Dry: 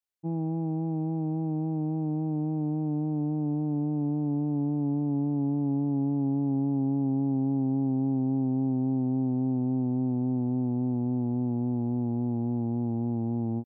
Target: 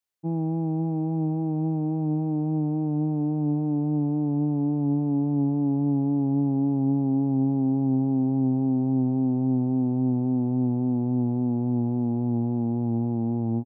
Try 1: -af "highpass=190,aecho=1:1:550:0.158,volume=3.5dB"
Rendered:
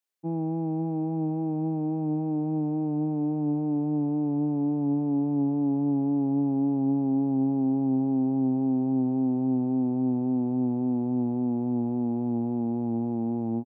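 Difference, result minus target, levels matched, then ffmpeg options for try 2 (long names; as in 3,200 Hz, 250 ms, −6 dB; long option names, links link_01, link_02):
125 Hz band −4.5 dB
-af "highpass=60,aecho=1:1:550:0.158,volume=3.5dB"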